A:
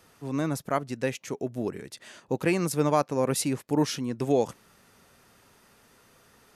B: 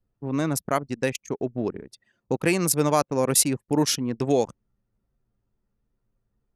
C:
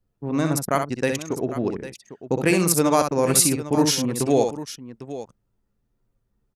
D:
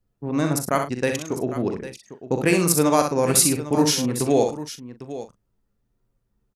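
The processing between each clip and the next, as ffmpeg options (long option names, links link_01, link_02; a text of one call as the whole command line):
ffmpeg -i in.wav -filter_complex "[0:a]anlmdn=3.98,highshelf=frequency=4200:gain=11,asplit=2[link_01][link_02];[link_02]acompressor=threshold=-30dB:ratio=6,volume=-2dB[link_03];[link_01][link_03]amix=inputs=2:normalize=0" out.wav
ffmpeg -i in.wav -af "aecho=1:1:58|64|802:0.133|0.501|0.211,volume=2dB" out.wav
ffmpeg -i in.wav -filter_complex "[0:a]asplit=2[link_01][link_02];[link_02]adelay=40,volume=-11dB[link_03];[link_01][link_03]amix=inputs=2:normalize=0" out.wav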